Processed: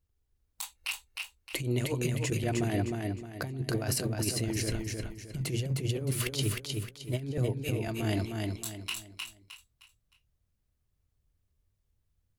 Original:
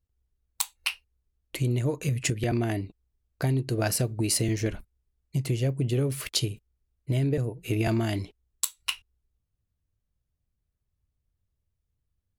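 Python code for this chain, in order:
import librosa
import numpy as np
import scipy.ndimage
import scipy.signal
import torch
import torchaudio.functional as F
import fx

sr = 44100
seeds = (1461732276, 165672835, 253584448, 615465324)

y = fx.hum_notches(x, sr, base_hz=60, count=4)
y = fx.over_compress(y, sr, threshold_db=-29.0, ratio=-0.5)
y = fx.echo_feedback(y, sr, ms=309, feedback_pct=34, wet_db=-3.5)
y = F.gain(torch.from_numpy(y), -1.5).numpy()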